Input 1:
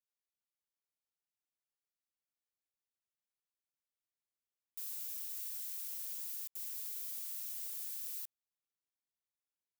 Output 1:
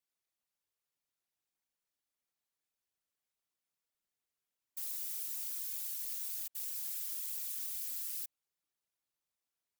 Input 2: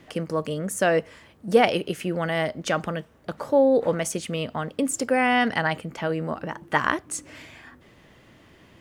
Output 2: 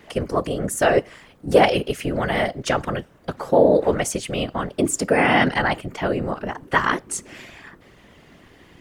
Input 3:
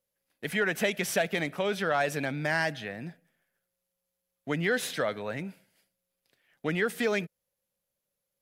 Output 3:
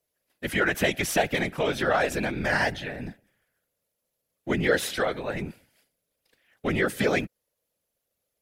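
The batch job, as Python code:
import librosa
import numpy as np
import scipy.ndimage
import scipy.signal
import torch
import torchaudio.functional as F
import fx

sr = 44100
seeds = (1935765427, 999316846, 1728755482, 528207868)

y = fx.whisperise(x, sr, seeds[0])
y = fx.wow_flutter(y, sr, seeds[1], rate_hz=2.1, depth_cents=19.0)
y = y * 10.0 ** (3.5 / 20.0)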